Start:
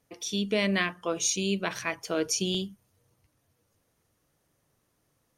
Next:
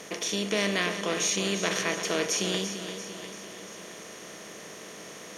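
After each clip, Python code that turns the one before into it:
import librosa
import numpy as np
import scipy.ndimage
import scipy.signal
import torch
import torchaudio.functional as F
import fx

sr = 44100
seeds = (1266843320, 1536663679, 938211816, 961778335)

y = fx.bin_compress(x, sr, power=0.4)
y = fx.highpass(y, sr, hz=160.0, slope=6)
y = fx.echo_feedback(y, sr, ms=342, feedback_pct=53, wet_db=-9.5)
y = F.gain(torch.from_numpy(y), -3.5).numpy()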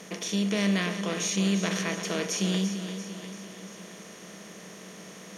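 y = fx.peak_eq(x, sr, hz=190.0, db=12.0, octaves=0.35)
y = F.gain(torch.from_numpy(y), -3.0).numpy()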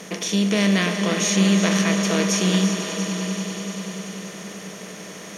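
y = fx.echo_swell(x, sr, ms=97, loudest=5, wet_db=-15.0)
y = F.gain(torch.from_numpy(y), 7.0).numpy()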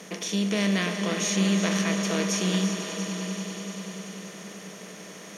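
y = scipy.signal.sosfilt(scipy.signal.butter(2, 110.0, 'highpass', fs=sr, output='sos'), x)
y = F.gain(torch.from_numpy(y), -5.5).numpy()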